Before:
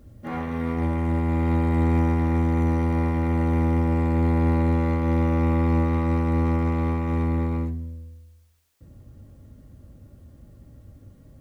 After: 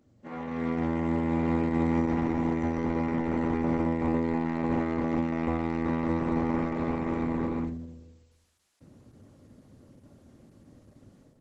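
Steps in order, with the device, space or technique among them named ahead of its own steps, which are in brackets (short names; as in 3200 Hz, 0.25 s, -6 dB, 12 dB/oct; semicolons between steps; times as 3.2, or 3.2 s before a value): 3.8–4.32 dynamic EQ 410 Hz, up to +3 dB, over -38 dBFS, Q 1.6; video call (HPF 170 Hz 12 dB/oct; AGC gain up to 9.5 dB; gain -8.5 dB; Opus 12 kbps 48000 Hz)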